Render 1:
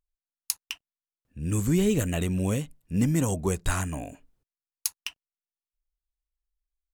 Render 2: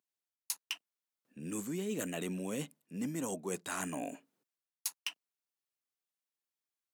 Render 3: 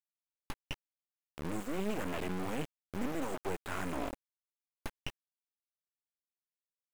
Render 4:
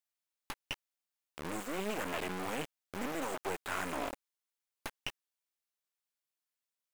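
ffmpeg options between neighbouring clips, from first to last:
-af "highpass=f=200:w=0.5412,highpass=f=200:w=1.3066,areverse,acompressor=threshold=-36dB:ratio=6,areverse,volume=1dB"
-filter_complex "[0:a]acrusher=bits=4:dc=4:mix=0:aa=0.000001,acrossover=split=2700[a][b];[b]acompressor=threshold=-55dB:ratio=4:attack=1:release=60[c];[a][c]amix=inputs=2:normalize=0,volume=5.5dB"
-af "lowshelf=f=350:g=-11.5,volume=4dB"

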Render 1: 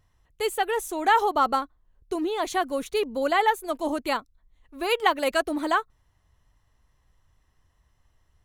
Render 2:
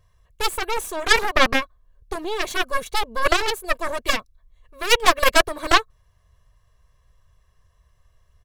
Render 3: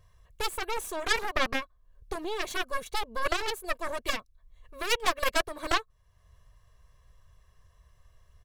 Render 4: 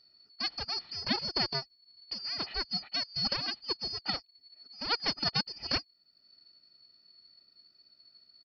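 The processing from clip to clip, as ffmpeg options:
-af "aecho=1:1:1.8:0.88,aeval=exprs='0.501*(cos(1*acos(clip(val(0)/0.501,-1,1)))-cos(1*PI/2))+0.0282*(cos(3*acos(clip(val(0)/0.501,-1,1)))-cos(3*PI/2))+0.0501*(cos(5*acos(clip(val(0)/0.501,-1,1)))-cos(5*PI/2))+0.112*(cos(6*acos(clip(val(0)/0.501,-1,1)))-cos(6*PI/2))+0.158*(cos(7*acos(clip(val(0)/0.501,-1,1)))-cos(7*PI/2))':c=same,volume=2.5dB"
-af "acompressor=threshold=-41dB:ratio=1.5"
-af "afftfilt=real='real(if(lt(b,272),68*(eq(floor(b/68),0)*1+eq(floor(b/68),1)*2+eq(floor(b/68),2)*3+eq(floor(b/68),3)*0)+mod(b,68),b),0)':imag='imag(if(lt(b,272),68*(eq(floor(b/68),0)*1+eq(floor(b/68),1)*2+eq(floor(b/68),2)*3+eq(floor(b/68),3)*0)+mod(b,68),b),0)':win_size=2048:overlap=0.75,aresample=11025,acrusher=bits=6:mode=log:mix=0:aa=0.000001,aresample=44100,volume=-4dB"

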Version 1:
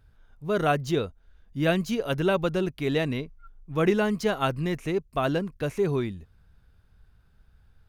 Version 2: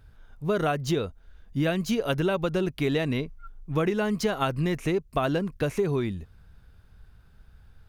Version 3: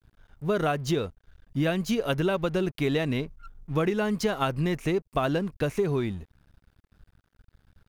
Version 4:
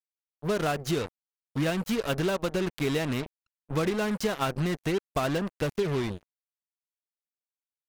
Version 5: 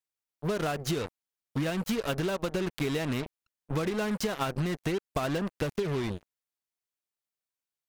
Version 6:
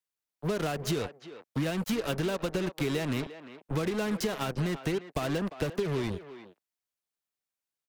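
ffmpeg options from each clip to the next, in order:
-af "acompressor=threshold=-27dB:ratio=10,volume=5.5dB"
-af "aeval=exprs='sgn(val(0))*max(abs(val(0))-0.00266,0)':c=same"
-af "acrusher=bits=4:mix=0:aa=0.5,volume=-2dB"
-af "acompressor=threshold=-28dB:ratio=6,volume=2dB"
-filter_complex "[0:a]acrossover=split=210|560|2200[a][b][c][d];[c]asoftclip=type=tanh:threshold=-31.5dB[e];[a][b][e][d]amix=inputs=4:normalize=0,asplit=2[f][g];[g]adelay=350,highpass=300,lowpass=3.4k,asoftclip=type=hard:threshold=-27dB,volume=-12dB[h];[f][h]amix=inputs=2:normalize=0"

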